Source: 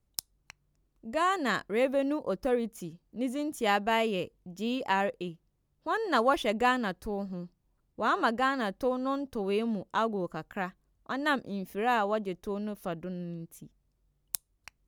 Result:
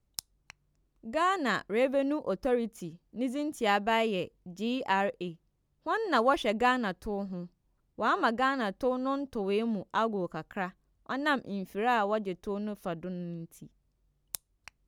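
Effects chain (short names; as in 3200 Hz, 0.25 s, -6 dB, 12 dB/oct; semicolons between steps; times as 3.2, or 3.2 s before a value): high shelf 11000 Hz -8 dB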